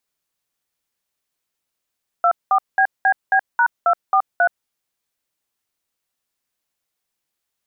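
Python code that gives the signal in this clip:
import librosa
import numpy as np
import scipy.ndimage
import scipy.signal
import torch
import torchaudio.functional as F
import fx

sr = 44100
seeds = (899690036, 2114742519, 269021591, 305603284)

y = fx.dtmf(sr, digits='24BBB#243', tone_ms=74, gap_ms=196, level_db=-14.5)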